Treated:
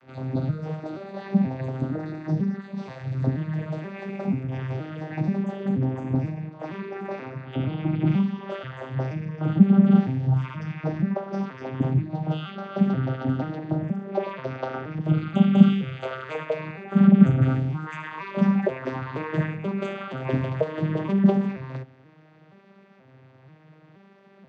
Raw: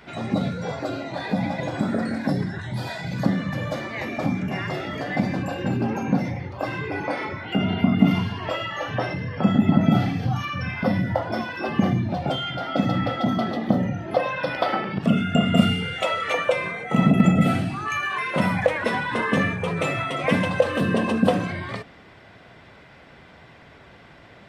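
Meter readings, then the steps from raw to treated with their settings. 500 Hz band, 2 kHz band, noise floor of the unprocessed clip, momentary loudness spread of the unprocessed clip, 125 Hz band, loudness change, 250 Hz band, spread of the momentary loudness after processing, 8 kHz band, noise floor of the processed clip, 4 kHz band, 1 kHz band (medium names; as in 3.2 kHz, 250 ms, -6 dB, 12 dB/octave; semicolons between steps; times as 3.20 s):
-4.5 dB, -11.0 dB, -48 dBFS, 10 LU, +1.0 dB, -1.5 dB, 0.0 dB, 15 LU, no reading, -54 dBFS, -13.0 dB, -8.5 dB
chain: vocoder on a broken chord minor triad, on C3, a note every 479 ms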